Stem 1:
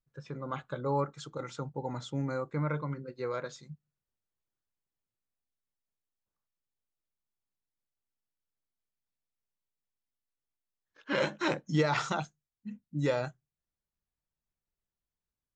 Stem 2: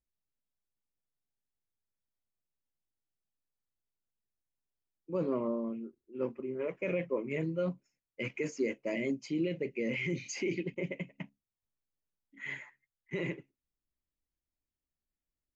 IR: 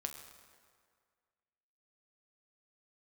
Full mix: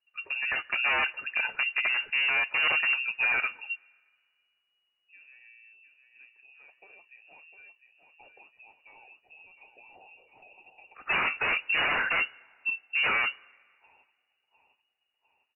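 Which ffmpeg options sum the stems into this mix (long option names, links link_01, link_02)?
-filter_complex "[0:a]acontrast=58,aeval=exprs='0.0562*(abs(mod(val(0)/0.0562+3,4)-2)-1)':channel_layout=same,volume=-1dB,asplit=3[link_01][link_02][link_03];[link_02]volume=-15dB[link_04];[1:a]equalizer=frequency=380:width=0.44:gain=-9,acompressor=threshold=-40dB:ratio=6,volume=-15dB,asplit=2[link_05][link_06];[link_06]volume=-8dB[link_07];[link_03]apad=whole_len=685912[link_08];[link_05][link_08]sidechaincompress=threshold=-49dB:ratio=8:attack=16:release=1270[link_09];[2:a]atrim=start_sample=2205[link_10];[link_04][link_10]afir=irnorm=-1:irlink=0[link_11];[link_07]aecho=0:1:704|1408|2112|2816|3520|4224|4928|5632:1|0.53|0.281|0.149|0.0789|0.0418|0.0222|0.0117[link_12];[link_01][link_09][link_11][link_12]amix=inputs=4:normalize=0,lowpass=frequency=2500:width_type=q:width=0.5098,lowpass=frequency=2500:width_type=q:width=0.6013,lowpass=frequency=2500:width_type=q:width=0.9,lowpass=frequency=2500:width_type=q:width=2.563,afreqshift=-2900,dynaudnorm=framelen=110:gausssize=9:maxgain=4.5dB"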